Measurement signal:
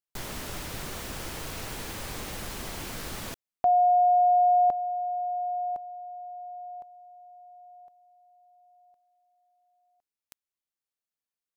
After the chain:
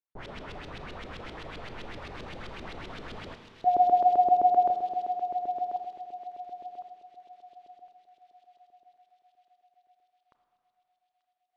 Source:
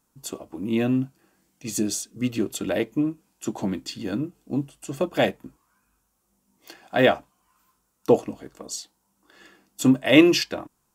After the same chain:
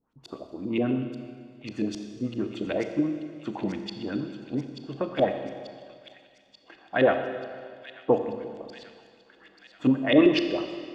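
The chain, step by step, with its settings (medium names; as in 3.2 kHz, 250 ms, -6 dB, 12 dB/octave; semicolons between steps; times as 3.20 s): LFO low-pass saw up 7.7 Hz 330–4000 Hz; feedback echo behind a high-pass 886 ms, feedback 63%, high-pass 3.2 kHz, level -7 dB; Schroeder reverb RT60 2 s, combs from 26 ms, DRR 6.5 dB; trim -5.5 dB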